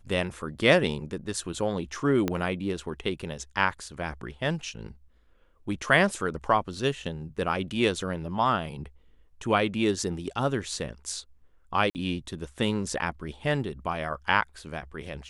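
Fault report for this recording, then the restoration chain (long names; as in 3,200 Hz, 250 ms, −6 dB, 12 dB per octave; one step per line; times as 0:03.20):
0:02.28: click −13 dBFS
0:11.90–0:11.95: drop-out 49 ms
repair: click removal
repair the gap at 0:11.90, 49 ms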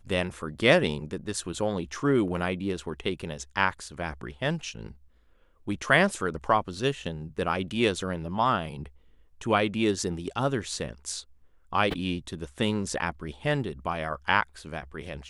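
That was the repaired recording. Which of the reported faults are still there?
0:02.28: click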